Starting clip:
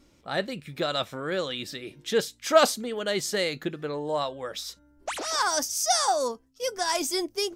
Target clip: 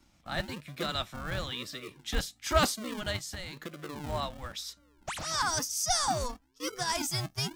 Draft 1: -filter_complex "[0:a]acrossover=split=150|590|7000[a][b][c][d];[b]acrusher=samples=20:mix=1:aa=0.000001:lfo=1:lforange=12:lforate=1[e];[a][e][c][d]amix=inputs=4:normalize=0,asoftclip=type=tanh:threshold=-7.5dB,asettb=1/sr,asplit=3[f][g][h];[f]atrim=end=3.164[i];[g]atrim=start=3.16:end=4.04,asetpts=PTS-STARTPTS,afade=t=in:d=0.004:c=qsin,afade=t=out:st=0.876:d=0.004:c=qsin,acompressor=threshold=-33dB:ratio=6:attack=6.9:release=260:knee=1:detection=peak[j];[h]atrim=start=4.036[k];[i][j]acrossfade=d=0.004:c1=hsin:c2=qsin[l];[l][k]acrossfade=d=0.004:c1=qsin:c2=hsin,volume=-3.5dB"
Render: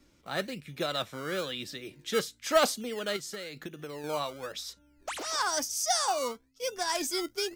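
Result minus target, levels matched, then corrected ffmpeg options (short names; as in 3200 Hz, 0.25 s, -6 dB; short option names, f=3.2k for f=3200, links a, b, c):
decimation with a swept rate: distortion -32 dB
-filter_complex "[0:a]acrossover=split=150|590|7000[a][b][c][d];[b]acrusher=samples=71:mix=1:aa=0.000001:lfo=1:lforange=42.6:lforate=1[e];[a][e][c][d]amix=inputs=4:normalize=0,asoftclip=type=tanh:threshold=-7.5dB,asettb=1/sr,asplit=3[f][g][h];[f]atrim=end=3.164[i];[g]atrim=start=3.16:end=4.04,asetpts=PTS-STARTPTS,afade=t=in:d=0.004:c=qsin,afade=t=out:st=0.876:d=0.004:c=qsin,acompressor=threshold=-33dB:ratio=6:attack=6.9:release=260:knee=1:detection=peak[j];[h]atrim=start=4.036[k];[i][j]acrossfade=d=0.004:c1=hsin:c2=qsin[l];[l][k]acrossfade=d=0.004:c1=qsin:c2=hsin,volume=-3.5dB"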